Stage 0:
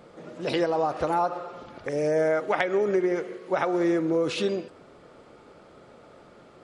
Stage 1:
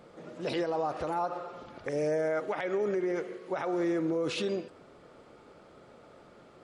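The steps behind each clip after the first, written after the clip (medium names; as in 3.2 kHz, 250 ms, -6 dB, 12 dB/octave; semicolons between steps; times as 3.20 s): peak limiter -19 dBFS, peak gain reduction 10 dB; trim -3.5 dB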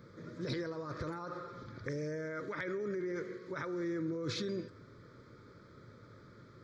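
in parallel at -3 dB: compressor with a negative ratio -34 dBFS, ratio -0.5; on the sum: peaking EQ 110 Hz +13.5 dB 0.56 oct; static phaser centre 2.8 kHz, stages 6; trim -6.5 dB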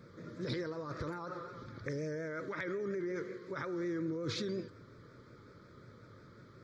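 vibrato 5.5 Hz 60 cents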